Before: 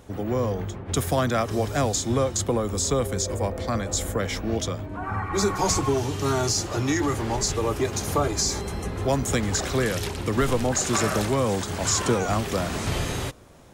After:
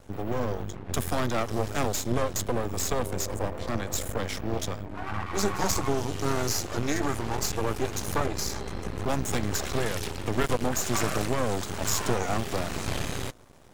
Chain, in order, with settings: 8.26–8.86 bell 12000 Hz -10 dB 1.2 oct; half-wave rectifier

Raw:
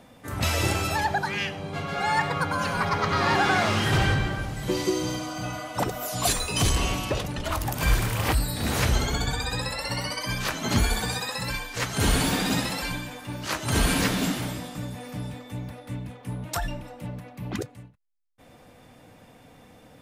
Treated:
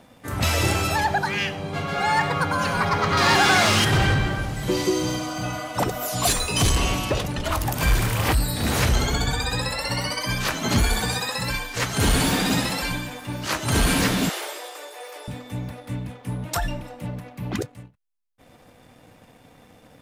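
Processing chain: sample leveller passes 1; 3.17–3.85 high shelf 2900 Hz +10.5 dB; 14.29–15.28 steep high-pass 360 Hz 72 dB/oct

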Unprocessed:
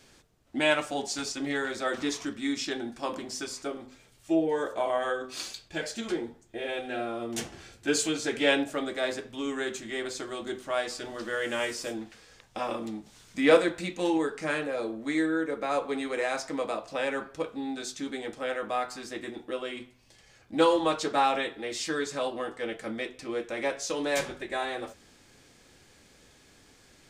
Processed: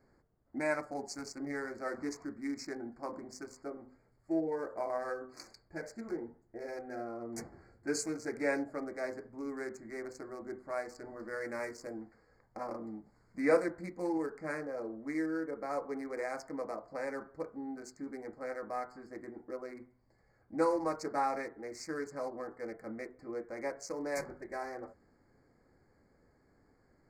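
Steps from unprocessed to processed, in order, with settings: Wiener smoothing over 15 samples; Chebyshev band-stop 2200–4500 Hz, order 3; gain -7 dB

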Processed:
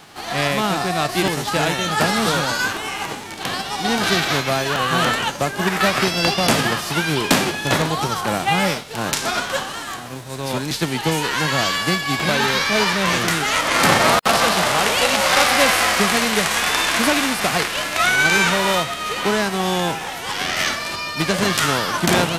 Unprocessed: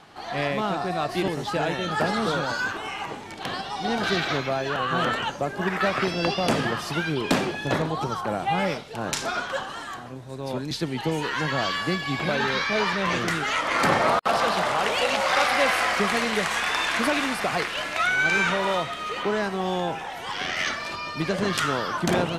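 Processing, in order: spectral whitening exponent 0.6; gain +6 dB

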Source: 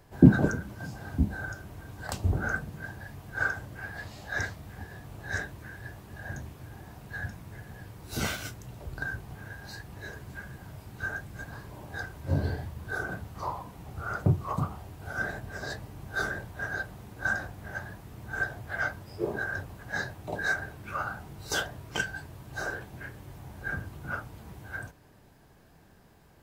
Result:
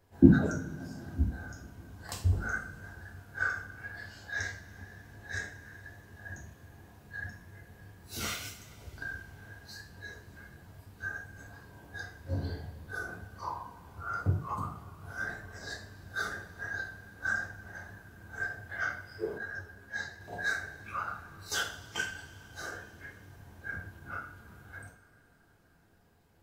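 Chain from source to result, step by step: spectral noise reduction 7 dB; two-slope reverb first 0.43 s, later 4 s, from -22 dB, DRR -0.5 dB; 19.38–20.21 ensemble effect; gain -4.5 dB

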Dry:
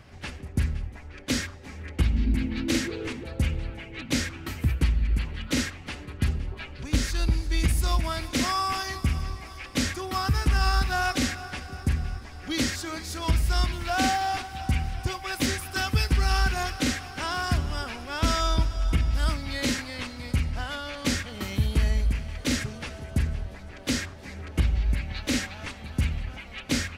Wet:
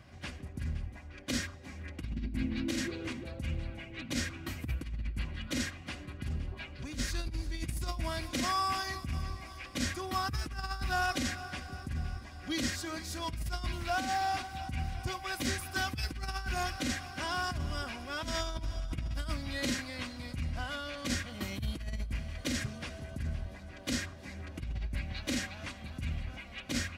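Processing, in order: negative-ratio compressor -25 dBFS, ratio -0.5; notch comb 440 Hz; gain -6 dB

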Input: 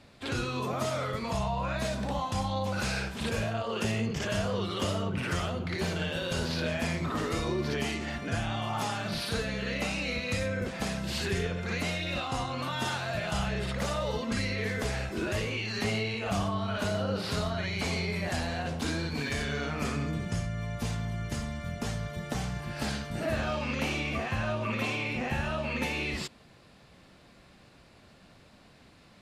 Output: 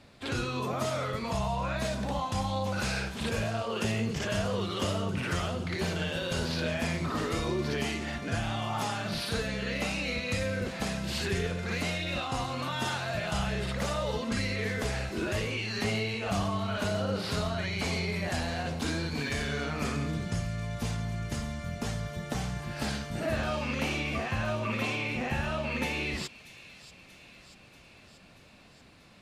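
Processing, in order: thin delay 0.635 s, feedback 65%, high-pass 3200 Hz, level -12.5 dB

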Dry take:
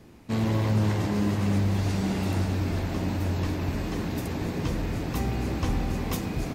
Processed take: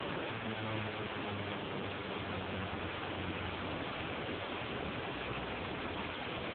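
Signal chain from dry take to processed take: bell 460 Hz +5 dB 0.5 oct; fuzz box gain 48 dB, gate -55 dBFS; speakerphone echo 0.15 s, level -14 dB; dynamic EQ 2600 Hz, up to -6 dB, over -34 dBFS, Q 1.2; wavefolder -25.5 dBFS; notch 1900 Hz, Q 11; limiter -34 dBFS, peak gain reduction 10 dB; gain +7 dB; AMR-NB 6.7 kbps 8000 Hz

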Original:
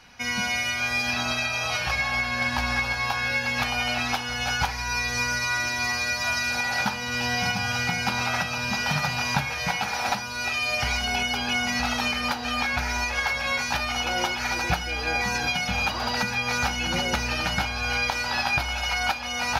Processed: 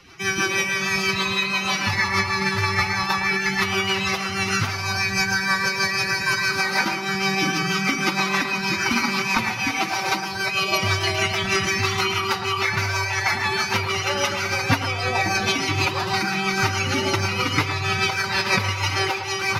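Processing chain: rotary speaker horn 6.3 Hz; formant-preserving pitch shift +8 st; narrowing echo 0.11 s, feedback 45%, band-pass 760 Hz, level -7 dB; gain +6.5 dB

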